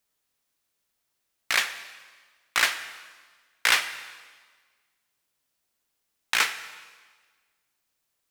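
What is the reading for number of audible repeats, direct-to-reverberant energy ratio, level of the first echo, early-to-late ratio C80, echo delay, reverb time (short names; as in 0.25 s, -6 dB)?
none, 10.0 dB, none, 13.0 dB, none, 1.5 s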